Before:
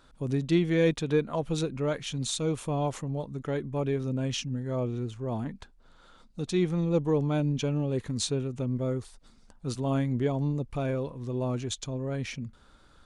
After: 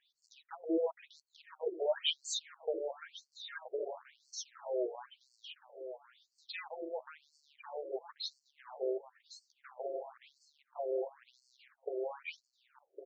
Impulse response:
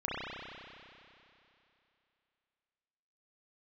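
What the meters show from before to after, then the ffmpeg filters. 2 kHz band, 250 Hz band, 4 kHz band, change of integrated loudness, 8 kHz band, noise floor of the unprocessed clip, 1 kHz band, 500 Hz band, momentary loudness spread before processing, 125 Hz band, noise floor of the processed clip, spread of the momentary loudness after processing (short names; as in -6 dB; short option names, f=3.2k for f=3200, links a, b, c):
-8.5 dB, -17.5 dB, -3.0 dB, -10.0 dB, -9.0 dB, -58 dBFS, -8.5 dB, -7.5 dB, 9 LU, under -40 dB, -82 dBFS, 21 LU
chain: -filter_complex "[0:a]asplit=2[a][b];[b]adelay=13,volume=-2.5dB[c];[a][c]amix=inputs=2:normalize=0,acrossover=split=1400[d][e];[e]alimiter=level_in=2dB:limit=-24dB:level=0:latency=1:release=223,volume=-2dB[f];[d][f]amix=inputs=2:normalize=0,asubboost=boost=9:cutoff=160,asuperstop=centerf=1100:order=4:qfactor=2.5,dynaudnorm=f=550:g=9:m=5.5dB,afftdn=nr=16:nf=-31,acompressor=threshold=-24dB:ratio=16,volume=23.5dB,asoftclip=hard,volume=-23.5dB,asplit=2[g][h];[h]adelay=1108,lowpass=f=4.5k:p=1,volume=-10dB,asplit=2[i][j];[j]adelay=1108,lowpass=f=4.5k:p=1,volume=0.27,asplit=2[k][l];[l]adelay=1108,lowpass=f=4.5k:p=1,volume=0.27[m];[i][k][m]amix=inputs=3:normalize=0[n];[g][n]amix=inputs=2:normalize=0,afftfilt=real='re*between(b*sr/1024,470*pow(6100/470,0.5+0.5*sin(2*PI*0.98*pts/sr))/1.41,470*pow(6100/470,0.5+0.5*sin(2*PI*0.98*pts/sr))*1.41)':imag='im*between(b*sr/1024,470*pow(6100/470,0.5+0.5*sin(2*PI*0.98*pts/sr))/1.41,470*pow(6100/470,0.5+0.5*sin(2*PI*0.98*pts/sr))*1.41)':win_size=1024:overlap=0.75,volume=8.5dB"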